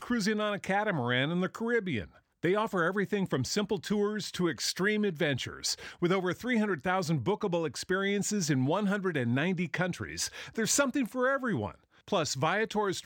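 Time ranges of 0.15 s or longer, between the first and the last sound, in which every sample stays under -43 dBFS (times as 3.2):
2.05–2.43
11.74–12.08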